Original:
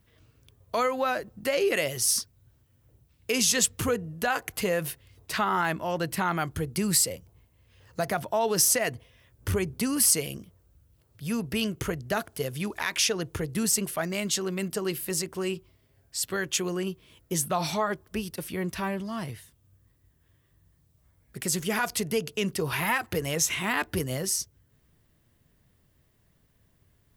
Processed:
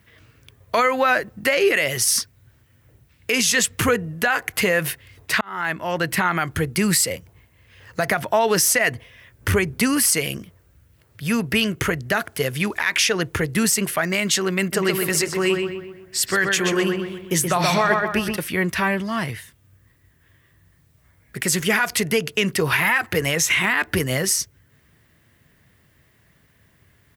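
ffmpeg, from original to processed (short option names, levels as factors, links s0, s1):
-filter_complex "[0:a]asplit=3[s0][s1][s2];[s0]afade=t=out:st=14.72:d=0.02[s3];[s1]asplit=2[s4][s5];[s5]adelay=126,lowpass=f=2700:p=1,volume=0.631,asplit=2[s6][s7];[s7]adelay=126,lowpass=f=2700:p=1,volume=0.49,asplit=2[s8][s9];[s9]adelay=126,lowpass=f=2700:p=1,volume=0.49,asplit=2[s10][s11];[s11]adelay=126,lowpass=f=2700:p=1,volume=0.49,asplit=2[s12][s13];[s13]adelay=126,lowpass=f=2700:p=1,volume=0.49,asplit=2[s14][s15];[s15]adelay=126,lowpass=f=2700:p=1,volume=0.49[s16];[s4][s6][s8][s10][s12][s14][s16]amix=inputs=7:normalize=0,afade=t=in:st=14.72:d=0.02,afade=t=out:st=18.36:d=0.02[s17];[s2]afade=t=in:st=18.36:d=0.02[s18];[s3][s17][s18]amix=inputs=3:normalize=0,asplit=2[s19][s20];[s19]atrim=end=5.41,asetpts=PTS-STARTPTS,afade=t=out:st=5.406:d=0.004:c=hsin[s21];[s20]atrim=start=5.41,asetpts=PTS-STARTPTS,afade=t=in:d=0.76[s22];[s21][s22]concat=n=2:v=0:a=1,highpass=60,equalizer=f=1900:w=1.2:g=9,alimiter=limit=0.158:level=0:latency=1:release=81,volume=2.37"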